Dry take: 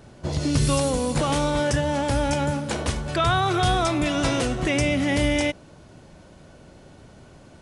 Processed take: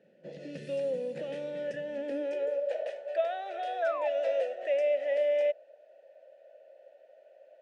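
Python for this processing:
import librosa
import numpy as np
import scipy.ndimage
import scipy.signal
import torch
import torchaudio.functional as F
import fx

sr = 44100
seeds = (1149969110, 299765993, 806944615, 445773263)

y = fx.filter_sweep_highpass(x, sr, from_hz=180.0, to_hz=640.0, start_s=1.8, end_s=2.74, q=6.7)
y = fx.vowel_filter(y, sr, vowel='e')
y = fx.spec_paint(y, sr, seeds[0], shape='fall', start_s=3.82, length_s=0.26, low_hz=800.0, high_hz=1700.0, level_db=-33.0)
y = y * 10.0 ** (-4.5 / 20.0)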